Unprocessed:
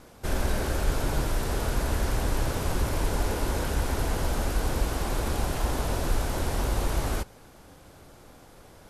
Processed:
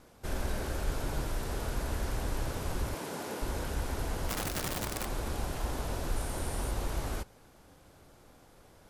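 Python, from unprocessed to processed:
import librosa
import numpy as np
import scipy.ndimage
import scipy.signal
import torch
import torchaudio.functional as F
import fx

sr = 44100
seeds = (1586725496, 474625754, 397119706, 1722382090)

y = fx.highpass(x, sr, hz=150.0, slope=24, at=(2.94, 3.42))
y = fx.overflow_wrap(y, sr, gain_db=22.0, at=(4.28, 5.07))
y = fx.peak_eq(y, sr, hz=9300.0, db=10.5, octaves=0.27, at=(6.16, 6.71))
y = F.gain(torch.from_numpy(y), -7.0).numpy()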